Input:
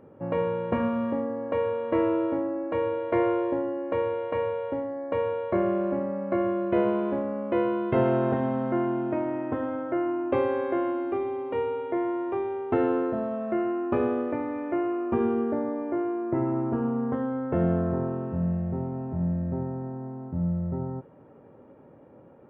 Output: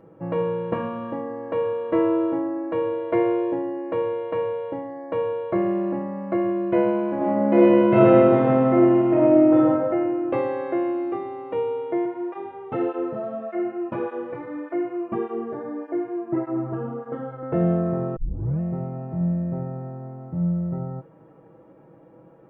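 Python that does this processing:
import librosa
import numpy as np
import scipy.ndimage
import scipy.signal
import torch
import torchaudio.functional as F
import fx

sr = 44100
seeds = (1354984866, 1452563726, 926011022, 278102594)

y = fx.reverb_throw(x, sr, start_s=7.15, length_s=2.44, rt60_s=1.8, drr_db=-7.0)
y = fx.flanger_cancel(y, sr, hz=1.7, depth_ms=4.2, at=(12.05, 17.43))
y = fx.edit(y, sr, fx.tape_start(start_s=18.16, length_s=0.44), tone=tone)
y = y + 0.71 * np.pad(y, (int(6.1 * sr / 1000.0), 0))[:len(y)]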